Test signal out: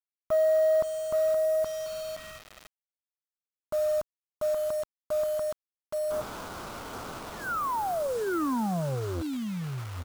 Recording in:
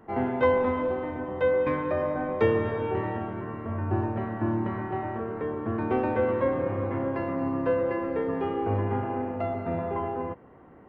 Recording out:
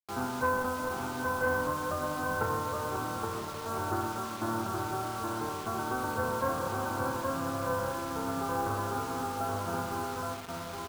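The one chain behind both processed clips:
spectral envelope flattened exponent 0.1
Butterworth low-pass 1,500 Hz 96 dB per octave
single-tap delay 821 ms −3.5 dB
bit reduction 7 bits
saturating transformer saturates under 330 Hz

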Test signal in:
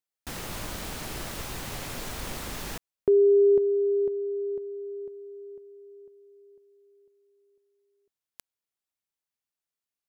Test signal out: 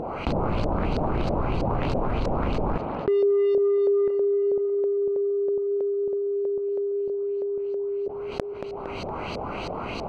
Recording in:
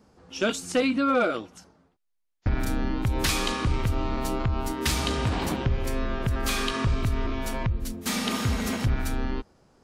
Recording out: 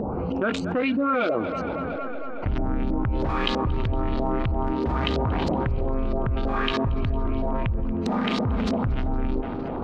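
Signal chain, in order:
adaptive Wiener filter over 25 samples
brickwall limiter −19.5 dBFS
auto-filter low-pass saw up 3.1 Hz 540–4,900 Hz
upward compression, threshold −29 dBFS
on a send: tape delay 230 ms, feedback 80%, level −19.5 dB, low-pass 3,800 Hz
on the sum: envelope flattener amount 70%
level −1 dB

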